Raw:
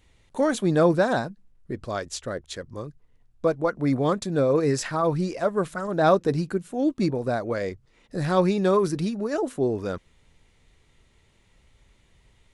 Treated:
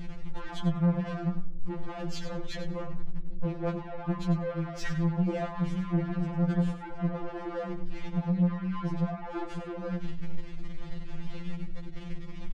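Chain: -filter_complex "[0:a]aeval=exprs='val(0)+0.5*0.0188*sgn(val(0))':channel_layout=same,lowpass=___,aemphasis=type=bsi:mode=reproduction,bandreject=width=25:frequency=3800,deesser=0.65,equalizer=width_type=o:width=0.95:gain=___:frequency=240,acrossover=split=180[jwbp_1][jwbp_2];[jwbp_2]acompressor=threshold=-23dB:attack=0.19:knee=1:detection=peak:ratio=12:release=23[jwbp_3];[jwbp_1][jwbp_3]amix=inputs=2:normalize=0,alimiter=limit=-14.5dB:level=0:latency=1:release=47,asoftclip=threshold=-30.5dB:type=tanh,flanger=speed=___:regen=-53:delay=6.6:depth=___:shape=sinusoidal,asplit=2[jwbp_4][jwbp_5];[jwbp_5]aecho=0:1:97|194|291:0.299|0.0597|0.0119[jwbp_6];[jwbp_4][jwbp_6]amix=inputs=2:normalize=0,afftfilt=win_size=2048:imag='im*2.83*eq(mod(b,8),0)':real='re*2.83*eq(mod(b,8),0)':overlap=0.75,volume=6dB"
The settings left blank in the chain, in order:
5100, 7, 1.6, 5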